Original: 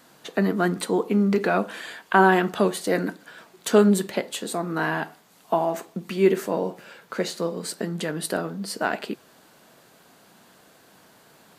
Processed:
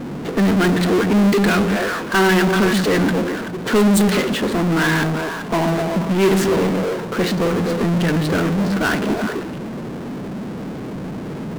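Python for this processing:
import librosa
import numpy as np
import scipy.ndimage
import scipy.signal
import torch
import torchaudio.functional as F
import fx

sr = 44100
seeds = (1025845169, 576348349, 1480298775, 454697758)

p1 = fx.highpass(x, sr, hz=59.0, slope=6)
p2 = fx.peak_eq(p1, sr, hz=720.0, db=-12.0, octaves=1.2)
p3 = p2 + fx.echo_stepped(p2, sr, ms=128, hz=200.0, octaves=1.4, feedback_pct=70, wet_db=-4.0, dry=0)
p4 = fx.env_lowpass(p3, sr, base_hz=420.0, full_db=-18.0)
y = fx.power_curve(p4, sr, exponent=0.35)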